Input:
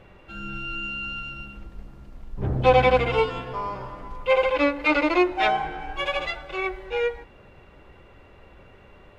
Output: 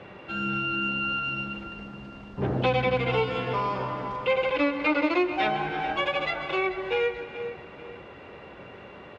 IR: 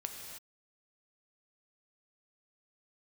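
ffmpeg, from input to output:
-filter_complex "[0:a]highpass=140,lowpass=4.9k,asplit=2[a][b];[1:a]atrim=start_sample=2205,adelay=134[c];[b][c]afir=irnorm=-1:irlink=0,volume=-15.5dB[d];[a][d]amix=inputs=2:normalize=0,acrossover=split=250|1900[e][f][g];[e]acompressor=threshold=-37dB:ratio=4[h];[f]acompressor=threshold=-35dB:ratio=4[i];[g]acompressor=threshold=-41dB:ratio=4[j];[h][i][j]amix=inputs=3:normalize=0,aecho=1:1:437|874|1311|1748:0.178|0.0694|0.027|0.0105,volume=7.5dB"

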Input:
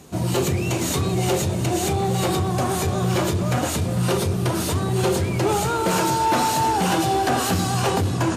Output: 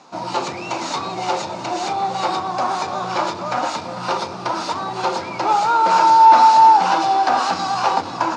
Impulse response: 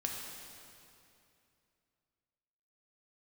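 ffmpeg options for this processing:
-af "highpass=390,equalizer=f=410:t=q:w=4:g=-10,equalizer=f=900:t=q:w=4:g=10,equalizer=f=1.3k:t=q:w=4:g=5,equalizer=f=1.8k:t=q:w=4:g=-4,equalizer=f=3.1k:t=q:w=4:g=-6,equalizer=f=5k:t=q:w=4:g=3,lowpass=f=5.4k:w=0.5412,lowpass=f=5.4k:w=1.3066,volume=2.5dB"

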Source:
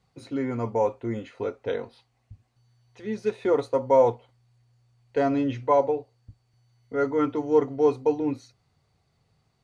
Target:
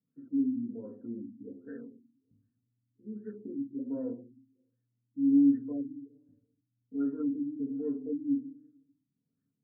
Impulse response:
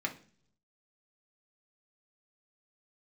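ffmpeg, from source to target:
-filter_complex "[0:a]asplit=3[a][b][c];[a]bandpass=f=270:t=q:w=8,volume=0dB[d];[b]bandpass=f=2.29k:t=q:w=8,volume=-6dB[e];[c]bandpass=f=3.01k:t=q:w=8,volume=-9dB[f];[d][e][f]amix=inputs=3:normalize=0[g];[1:a]atrim=start_sample=2205,asetrate=33957,aresample=44100[h];[g][h]afir=irnorm=-1:irlink=0,afftfilt=real='re*lt(b*sr/1024,310*pow(1900/310,0.5+0.5*sin(2*PI*1.3*pts/sr)))':imag='im*lt(b*sr/1024,310*pow(1900/310,0.5+0.5*sin(2*PI*1.3*pts/sr)))':win_size=1024:overlap=0.75,volume=-3dB"

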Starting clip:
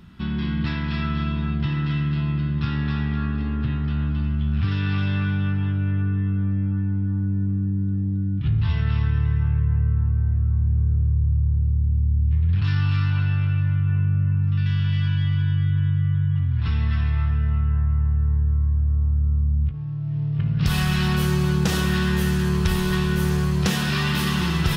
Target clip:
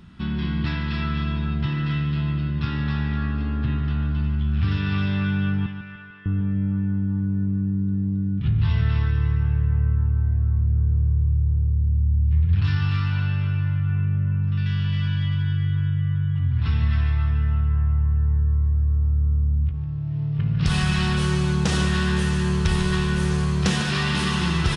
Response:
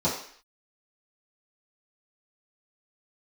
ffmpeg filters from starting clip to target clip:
-filter_complex "[0:a]asettb=1/sr,asplit=3[a][b][c];[a]atrim=end=5.664[d];[b]atrim=start=5.66:end=6.26,asetpts=PTS-STARTPTS,afade=t=in:d=0.004:c=qsin,afade=t=out:st=0.596:d=0.004:c=qsin,highpass=1.2k[e];[c]atrim=start=6.256[f];[d][e]acrossfade=d=0.004:c1=hsin:c2=qsin[g];[g][f]acrossfade=d=0.004:c1=qsin:c2=hsin,asplit=2[h][i];[i]aecho=0:1:148|296|444|592|740:0.299|0.14|0.0659|0.031|0.0146[j];[h][j]amix=inputs=2:normalize=0,aresample=22050,aresample=44100"

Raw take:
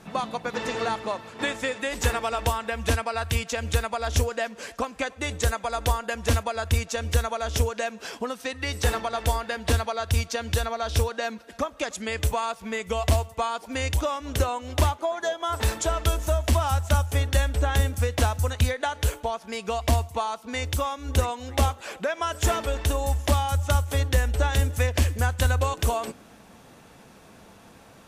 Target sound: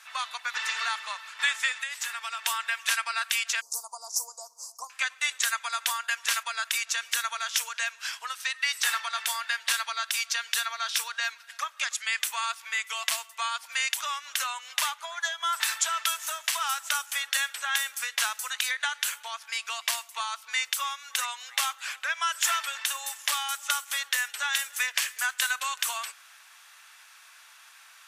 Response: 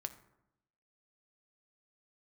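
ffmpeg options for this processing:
-filter_complex "[0:a]highpass=f=1.3k:w=0.5412,highpass=f=1.3k:w=1.3066,asettb=1/sr,asplit=3[a][b][c];[a]atrim=end=1.714[d];[b]atrim=start=1.71:end=2.45,asetpts=PTS-STARTPTS,afade=t=in:d=0.004:c=qsin,afade=t=out:st=0.736:d=0.004:c=qsin,acompressor=threshold=-35dB:ratio=6[e];[c]atrim=start=2.446[f];[d][e]acrossfade=d=0.004:c1=hsin:c2=qsin[g];[g][f]acrossfade=d=0.004:c1=qsin:c2=hsin,asettb=1/sr,asplit=3[h][i][j];[h]atrim=end=3.614[k];[i]atrim=start=3.61:end=4.9,asetpts=PTS-STARTPTS,afade=t=in:d=0.004:c=qsin,afade=t=out:st=1.286:d=0.004:c=qsin,asuperstop=centerf=2300:order=12:qfactor=0.57[l];[j]atrim=start=4.896[m];[k][l]acrossfade=d=0.004:c1=hsin:c2=qsin[n];[n][m]acrossfade=d=0.004:c1=qsin:c2=hsin,volume=4.5dB"

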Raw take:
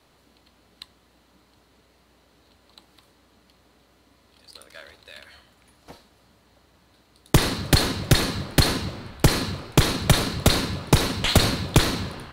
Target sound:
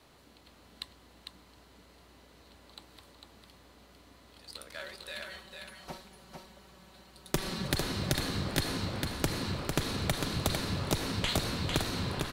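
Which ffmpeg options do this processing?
-filter_complex "[0:a]asettb=1/sr,asplit=3[a][b][c];[a]atrim=end=4.794[d];[b]atrim=start=4.79:end=7.68,asetpts=PTS-STARTPTS,afade=t=in:d=0.004:c=qsin,afade=t=out:st=2.886:d=0.004:c=qsin,aecho=1:1:5.3:0.79,atrim=end_sample=127449[e];[c]atrim=start=7.676[f];[d][e]acrossfade=d=0.004:c1=hsin:c2=qsin[g];[g][f]acrossfade=d=0.004:c1=qsin:c2=hsin,acompressor=threshold=-28dB:ratio=16,aecho=1:1:451:0.562"

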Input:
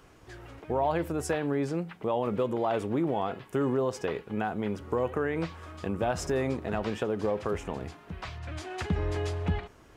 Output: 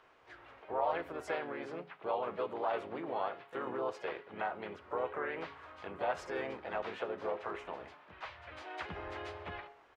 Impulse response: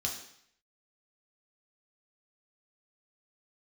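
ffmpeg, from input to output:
-filter_complex "[0:a]acrossover=split=490 3700:gain=0.112 1 0.1[a][b][c];[a][b][c]amix=inputs=3:normalize=0,asplit=3[d][e][f];[e]asetrate=37084,aresample=44100,atempo=1.18921,volume=-6dB[g];[f]asetrate=55563,aresample=44100,atempo=0.793701,volume=-9dB[h];[d][g][h]amix=inputs=3:normalize=0,bandreject=f=139.3:t=h:w=4,bandreject=f=278.6:t=h:w=4,bandreject=f=417.9:t=h:w=4,bandreject=f=557.2:t=h:w=4,bandreject=f=696.5:t=h:w=4,bandreject=f=835.8:t=h:w=4,bandreject=f=975.1:t=h:w=4,bandreject=f=1.1144k:t=h:w=4,bandreject=f=1.2537k:t=h:w=4,bandreject=f=1.393k:t=h:w=4,bandreject=f=1.5323k:t=h:w=4,bandreject=f=1.6716k:t=h:w=4,bandreject=f=1.8109k:t=h:w=4,bandreject=f=1.9502k:t=h:w=4,bandreject=f=2.0895k:t=h:w=4,bandreject=f=2.2288k:t=h:w=4,bandreject=f=2.3681k:t=h:w=4,bandreject=f=2.5074k:t=h:w=4,bandreject=f=2.6467k:t=h:w=4,bandreject=f=2.786k:t=h:w=4,bandreject=f=2.9253k:t=h:w=4,bandreject=f=3.0646k:t=h:w=4,bandreject=f=3.2039k:t=h:w=4,bandreject=f=3.3432k:t=h:w=4,bandreject=f=3.4825k:t=h:w=4,bandreject=f=3.6218k:t=h:w=4,bandreject=f=3.7611k:t=h:w=4,bandreject=f=3.9004k:t=h:w=4,bandreject=f=4.0397k:t=h:w=4,bandreject=f=4.179k:t=h:w=4,bandreject=f=4.3183k:t=h:w=4,bandreject=f=4.4576k:t=h:w=4,bandreject=f=4.5969k:t=h:w=4,bandreject=f=4.7362k:t=h:w=4,bandreject=f=4.8755k:t=h:w=4,bandreject=f=5.0148k:t=h:w=4,bandreject=f=5.1541k:t=h:w=4,bandreject=f=5.2934k:t=h:w=4,bandreject=f=5.4327k:t=h:w=4,volume=-4dB"

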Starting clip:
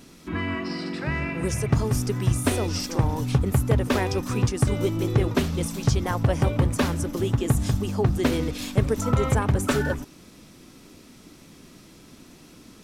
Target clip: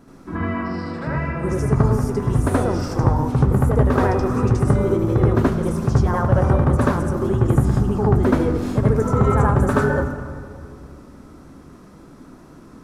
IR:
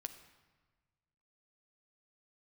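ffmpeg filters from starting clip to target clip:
-filter_complex "[0:a]highshelf=f=1.9k:t=q:w=1.5:g=-11.5,asplit=2[a][b];[1:a]atrim=start_sample=2205,asetrate=23373,aresample=44100,adelay=77[c];[b][c]afir=irnorm=-1:irlink=0,volume=4dB[d];[a][d]amix=inputs=2:normalize=0"

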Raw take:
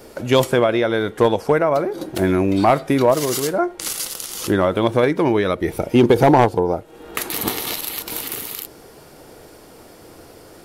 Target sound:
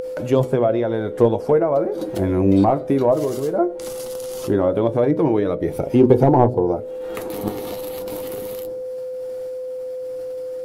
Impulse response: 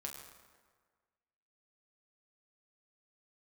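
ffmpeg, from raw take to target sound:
-filter_complex "[0:a]flanger=delay=6.4:depth=3.9:regen=54:speed=0.19:shape=triangular,agate=range=-33dB:threshold=-39dB:ratio=3:detection=peak,bandreject=f=62.37:t=h:w=4,bandreject=f=124.74:t=h:w=4,bandreject=f=187.11:t=h:w=4,bandreject=f=249.48:t=h:w=4,bandreject=f=311.85:t=h:w=4,bandreject=f=374.22:t=h:w=4,bandreject=f=436.59:t=h:w=4,bandreject=f=498.96:t=h:w=4,bandreject=f=561.33:t=h:w=4,bandreject=f=623.7:t=h:w=4,acrossover=split=880[a][b];[b]acompressor=threshold=-45dB:ratio=5[c];[a][c]amix=inputs=2:normalize=0,aeval=exprs='val(0)+0.02*sin(2*PI*510*n/s)':c=same,asplit=2[d][e];[e]acompressor=mode=upward:threshold=-24dB:ratio=2.5,volume=-1dB[f];[d][f]amix=inputs=2:normalize=0,volume=-1dB"

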